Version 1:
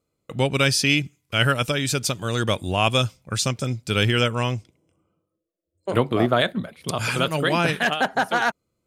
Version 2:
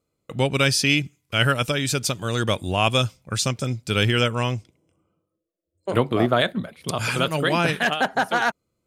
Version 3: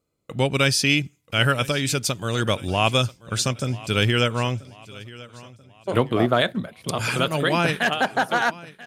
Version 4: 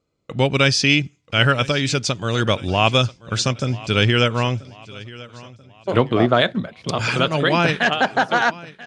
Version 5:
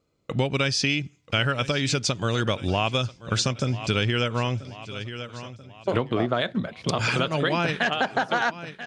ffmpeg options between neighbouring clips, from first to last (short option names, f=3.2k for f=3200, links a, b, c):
-af anull
-af "aecho=1:1:985|1970|2955|3940:0.1|0.047|0.0221|0.0104"
-af "lowpass=f=6.6k:w=0.5412,lowpass=f=6.6k:w=1.3066,volume=3.5dB"
-af "acompressor=threshold=-22dB:ratio=6,volume=1.5dB"